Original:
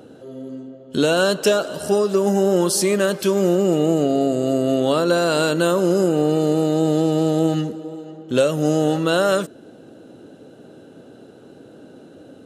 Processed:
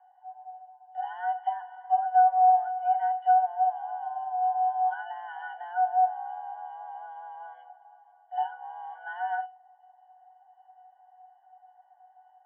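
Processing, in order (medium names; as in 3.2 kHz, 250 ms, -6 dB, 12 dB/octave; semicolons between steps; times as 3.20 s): mistuned SSB +350 Hz 320–2200 Hz; pitch-class resonator F#, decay 0.28 s; trim +4 dB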